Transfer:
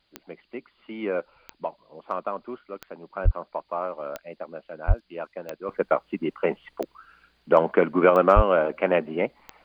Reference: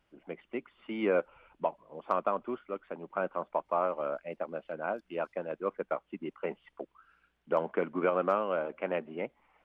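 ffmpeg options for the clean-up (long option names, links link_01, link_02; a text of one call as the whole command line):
ffmpeg -i in.wav -filter_complex "[0:a]adeclick=threshold=4,asplit=3[link_01][link_02][link_03];[link_01]afade=type=out:start_time=3.24:duration=0.02[link_04];[link_02]highpass=frequency=140:width=0.5412,highpass=frequency=140:width=1.3066,afade=type=in:start_time=3.24:duration=0.02,afade=type=out:start_time=3.36:duration=0.02[link_05];[link_03]afade=type=in:start_time=3.36:duration=0.02[link_06];[link_04][link_05][link_06]amix=inputs=3:normalize=0,asplit=3[link_07][link_08][link_09];[link_07]afade=type=out:start_time=4.87:duration=0.02[link_10];[link_08]highpass=frequency=140:width=0.5412,highpass=frequency=140:width=1.3066,afade=type=in:start_time=4.87:duration=0.02,afade=type=out:start_time=4.99:duration=0.02[link_11];[link_09]afade=type=in:start_time=4.99:duration=0.02[link_12];[link_10][link_11][link_12]amix=inputs=3:normalize=0,asplit=3[link_13][link_14][link_15];[link_13]afade=type=out:start_time=8.35:duration=0.02[link_16];[link_14]highpass=frequency=140:width=0.5412,highpass=frequency=140:width=1.3066,afade=type=in:start_time=8.35:duration=0.02,afade=type=out:start_time=8.47:duration=0.02[link_17];[link_15]afade=type=in:start_time=8.47:duration=0.02[link_18];[link_16][link_17][link_18]amix=inputs=3:normalize=0,agate=range=-21dB:threshold=-58dB,asetnsamples=nb_out_samples=441:pad=0,asendcmd='5.69 volume volume -11dB',volume=0dB" out.wav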